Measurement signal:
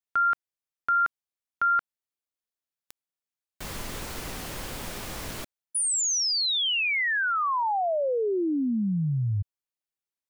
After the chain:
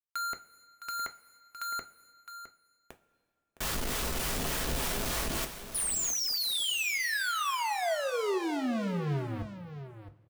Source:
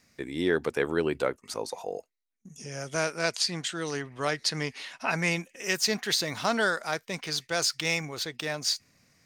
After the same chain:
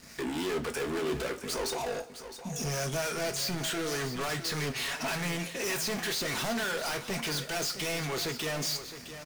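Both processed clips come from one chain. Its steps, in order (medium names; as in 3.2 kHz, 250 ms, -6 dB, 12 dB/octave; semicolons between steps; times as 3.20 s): band-stop 2.1 kHz, Q 19; harmonic tremolo 3.4 Hz, depth 50%, crossover 690 Hz; in parallel at +1.5 dB: compression, threshold -35 dBFS; on the sum: saturation -24.5 dBFS; waveshaping leveller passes 5; delay 662 ms -11.5 dB; two-slope reverb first 0.22 s, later 2 s, from -19 dB, DRR 6 dB; trim -7 dB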